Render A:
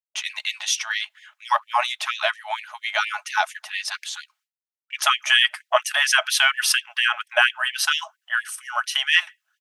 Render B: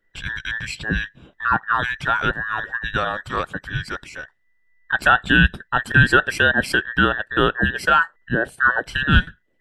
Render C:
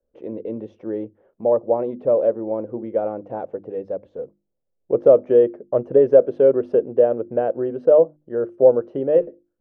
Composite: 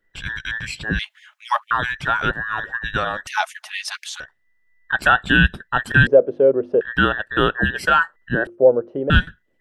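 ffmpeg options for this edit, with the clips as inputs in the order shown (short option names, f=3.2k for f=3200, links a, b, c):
-filter_complex "[0:a]asplit=2[a][b];[2:a]asplit=2[c][d];[1:a]asplit=5[e][f][g][h][i];[e]atrim=end=0.992[j];[a]atrim=start=0.988:end=1.712[k];[f]atrim=start=1.708:end=3.272[l];[b]atrim=start=3.268:end=4.202[m];[g]atrim=start=4.198:end=6.072[n];[c]atrim=start=6.068:end=6.812[o];[h]atrim=start=6.808:end=8.472[p];[d]atrim=start=8.468:end=9.102[q];[i]atrim=start=9.098[r];[j][k]acrossfade=d=0.004:c1=hsin:c2=hsin[s];[s][l]acrossfade=d=0.004:c1=hsin:c2=hsin[t];[t][m]acrossfade=d=0.004:c1=hsin:c2=hsin[u];[u][n]acrossfade=d=0.004:c1=hsin:c2=hsin[v];[v][o]acrossfade=d=0.004:c1=hsin:c2=hsin[w];[w][p]acrossfade=d=0.004:c1=hsin:c2=hsin[x];[x][q]acrossfade=d=0.004:c1=hsin:c2=hsin[y];[y][r]acrossfade=d=0.004:c1=hsin:c2=hsin"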